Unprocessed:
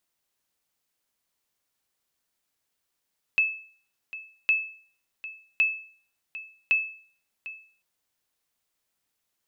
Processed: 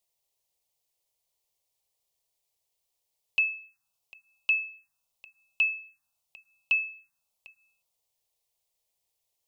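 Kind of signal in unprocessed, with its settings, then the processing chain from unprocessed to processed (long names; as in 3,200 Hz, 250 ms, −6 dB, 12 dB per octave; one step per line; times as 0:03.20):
ping with an echo 2,610 Hz, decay 0.48 s, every 1.11 s, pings 4, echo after 0.75 s, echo −16 dB −15 dBFS
phaser swept by the level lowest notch 250 Hz, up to 1,400 Hz, full sweep at −28.5 dBFS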